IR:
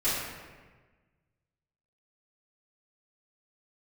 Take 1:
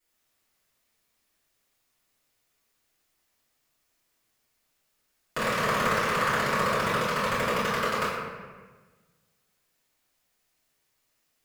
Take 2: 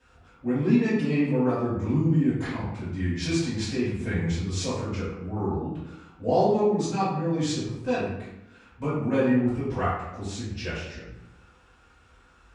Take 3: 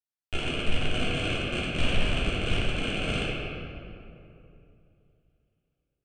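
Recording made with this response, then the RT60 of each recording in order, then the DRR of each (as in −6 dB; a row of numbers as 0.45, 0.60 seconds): 1; 1.4, 0.90, 2.7 seconds; −14.0, −13.5, −9.0 decibels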